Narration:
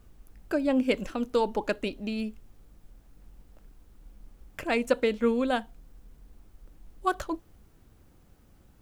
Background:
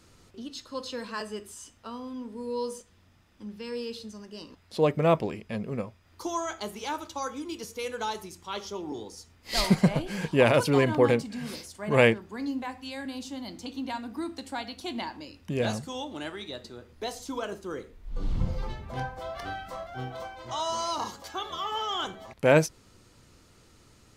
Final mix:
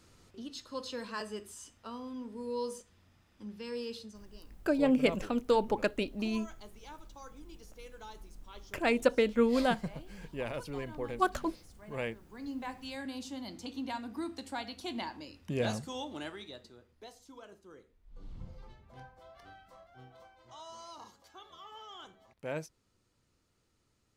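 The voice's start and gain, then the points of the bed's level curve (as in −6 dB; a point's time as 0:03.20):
4.15 s, −1.5 dB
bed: 0:03.96 −4 dB
0:04.54 −17 dB
0:12.12 −17 dB
0:12.69 −4 dB
0:16.18 −4 dB
0:17.19 −18 dB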